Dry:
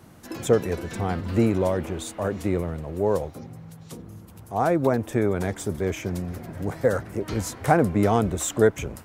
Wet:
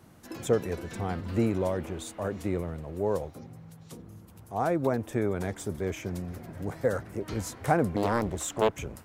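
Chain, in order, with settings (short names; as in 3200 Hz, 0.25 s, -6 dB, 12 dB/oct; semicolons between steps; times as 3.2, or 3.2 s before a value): 7.96–8.71 Doppler distortion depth 0.87 ms; gain -5.5 dB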